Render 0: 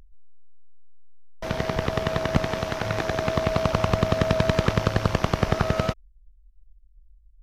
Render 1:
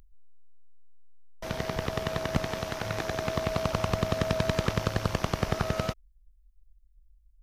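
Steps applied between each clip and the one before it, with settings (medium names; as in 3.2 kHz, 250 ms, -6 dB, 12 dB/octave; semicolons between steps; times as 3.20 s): treble shelf 6.1 kHz +9 dB; trim -6 dB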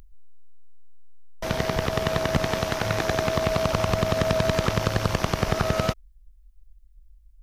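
peak limiter -17 dBFS, peak gain reduction 4.5 dB; trim +7.5 dB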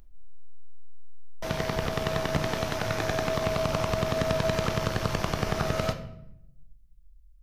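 simulated room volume 210 m³, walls mixed, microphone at 0.44 m; trim -4.5 dB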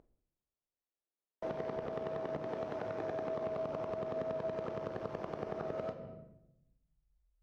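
compression 10:1, threshold -33 dBFS, peak gain reduction 12.5 dB; band-pass filter 450 Hz, Q 1.2; trim +3.5 dB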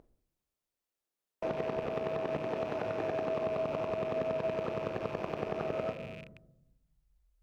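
rattle on loud lows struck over -56 dBFS, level -43 dBFS; trim +4.5 dB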